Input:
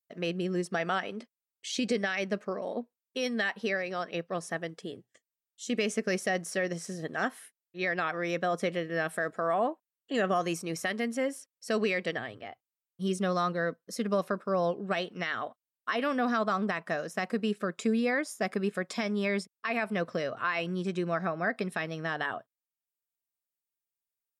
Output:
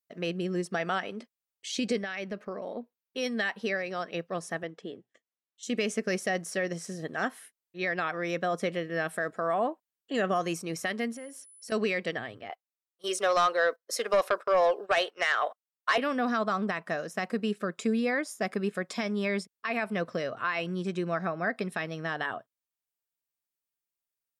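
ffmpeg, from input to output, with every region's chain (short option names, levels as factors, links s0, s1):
-filter_complex "[0:a]asettb=1/sr,asplit=3[s0][s1][s2];[s0]atrim=end=1.984[s3];[s1]atrim=start=1.98:end=3.18,asetpts=PTS-STARTPTS,afade=t=in:d=0.004:c=qsin,afade=t=out:st=1.196:d=0.004:c=qsin,acompressor=threshold=0.02:ratio=2:attack=3.2:release=140:knee=1:detection=peak,equalizer=f=7600:w=1.7:g=-9[s4];[s2]atrim=start=3.176[s5];[s3][s4]acrossfade=d=0.004:c1=hsin:c2=qsin[s6];[s6][s5]acrossfade=d=0.004:c1=qsin:c2=hsin,asettb=1/sr,asplit=3[s7][s8][s9];[s7]atrim=end=4.634[s10];[s8]atrim=start=4.63:end=5.63,asetpts=PTS-STARTPTS,afade=t=in:d=0.004:c=qsin,afade=t=out:st=0.996:d=0.004:c=qsin,highpass=180,lowpass=7900,aemphasis=mode=reproduction:type=50fm,bandreject=f=4700:w=8.6[s11];[s9]atrim=start=5.626[s12];[s10][s11]acrossfade=d=0.004:c1=hsin:c2=qsin[s13];[s13][s12]acrossfade=d=0.004:c1=qsin:c2=hsin,asettb=1/sr,asplit=3[s14][s15][s16];[s14]atrim=end=11.124[s17];[s15]atrim=start=11.12:end=11.72,asetpts=PTS-STARTPTS,afade=t=in:d=0.004:c=qsin,afade=t=out:st=0.596:d=0.004:c=qsin,acompressor=threshold=0.00891:ratio=4:attack=3.2:release=140:knee=1:detection=peak,aeval=exprs='val(0)+0.00251*sin(2*PI*10000*n/s)':c=same[s18];[s16]atrim=start=11.716[s19];[s17][s18]acrossfade=d=0.004:c1=hsin:c2=qsin[s20];[s20][s19]acrossfade=d=0.004:c1=qsin:c2=hsin,asettb=1/sr,asplit=3[s21][s22][s23];[s21]atrim=end=12.494[s24];[s22]atrim=start=12.49:end=15.98,asetpts=PTS-STARTPTS,afade=t=in:d=0.004:c=qsin,afade=t=out:st=3.486:d=0.004:c=qsin,highpass=f=460:w=0.5412,highpass=f=460:w=1.3066,agate=range=0.178:threshold=0.00282:ratio=16:release=100:detection=peak,aeval=exprs='0.126*sin(PI/2*1.58*val(0)/0.126)':c=same[s25];[s23]atrim=start=15.976[s26];[s24][s25]acrossfade=d=0.004:c1=hsin:c2=qsin[s27];[s27][s26]acrossfade=d=0.004:c1=qsin:c2=hsin"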